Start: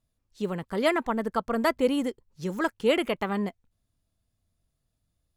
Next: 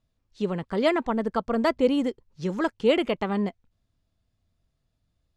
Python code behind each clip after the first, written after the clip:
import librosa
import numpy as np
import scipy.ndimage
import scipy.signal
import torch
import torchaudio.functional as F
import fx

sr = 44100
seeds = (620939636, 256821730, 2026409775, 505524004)

y = scipy.signal.sosfilt(scipy.signal.butter(2, 5500.0, 'lowpass', fs=sr, output='sos'), x)
y = fx.dynamic_eq(y, sr, hz=1600.0, q=0.86, threshold_db=-39.0, ratio=4.0, max_db=-5)
y = y * 10.0 ** (3.0 / 20.0)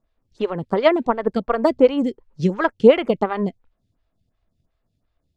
y = fx.lowpass(x, sr, hz=3500.0, slope=6)
y = fx.transient(y, sr, attack_db=7, sustain_db=2)
y = fx.stagger_phaser(y, sr, hz=2.8)
y = y * 10.0 ** (6.0 / 20.0)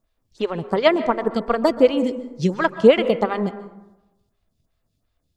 y = fx.high_shelf(x, sr, hz=3200.0, db=9.0)
y = fx.rev_plate(y, sr, seeds[0], rt60_s=0.99, hf_ratio=0.4, predelay_ms=115, drr_db=13.0)
y = y * 10.0 ** (-1.0 / 20.0)